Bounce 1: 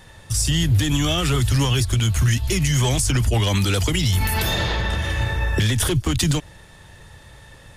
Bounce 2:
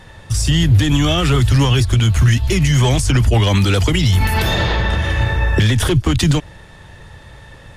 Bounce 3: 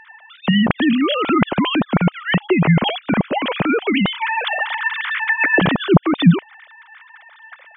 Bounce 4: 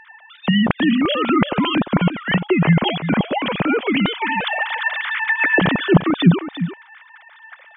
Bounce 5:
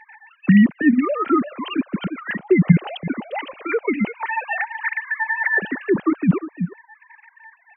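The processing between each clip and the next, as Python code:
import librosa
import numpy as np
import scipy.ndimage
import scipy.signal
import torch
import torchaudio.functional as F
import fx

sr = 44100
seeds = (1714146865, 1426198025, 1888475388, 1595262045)

y1 = fx.high_shelf(x, sr, hz=5700.0, db=-11.0)
y1 = y1 * 10.0 ** (6.0 / 20.0)
y2 = fx.sine_speech(y1, sr)
y2 = y2 * 10.0 ** (-3.5 / 20.0)
y3 = y2 + 10.0 ** (-11.0 / 20.0) * np.pad(y2, (int(348 * sr / 1000.0), 0))[:len(y2)]
y3 = y3 * 10.0 ** (-1.0 / 20.0)
y4 = fx.sine_speech(y3, sr)
y4 = y4 * 10.0 ** (-2.0 / 20.0)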